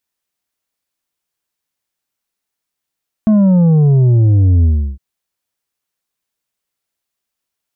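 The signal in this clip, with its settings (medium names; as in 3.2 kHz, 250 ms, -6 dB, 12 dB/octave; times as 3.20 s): sub drop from 220 Hz, over 1.71 s, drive 6 dB, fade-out 0.34 s, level -7.5 dB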